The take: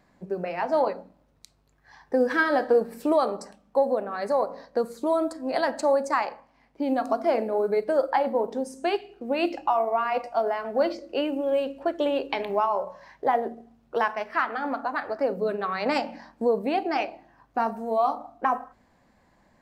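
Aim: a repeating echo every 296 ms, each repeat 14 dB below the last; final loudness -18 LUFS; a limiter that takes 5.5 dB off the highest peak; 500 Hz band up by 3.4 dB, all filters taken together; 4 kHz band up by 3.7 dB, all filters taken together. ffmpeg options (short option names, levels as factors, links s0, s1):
-af "equalizer=f=500:t=o:g=4,equalizer=f=4000:t=o:g=5,alimiter=limit=0.211:level=0:latency=1,aecho=1:1:296|592:0.2|0.0399,volume=2.24"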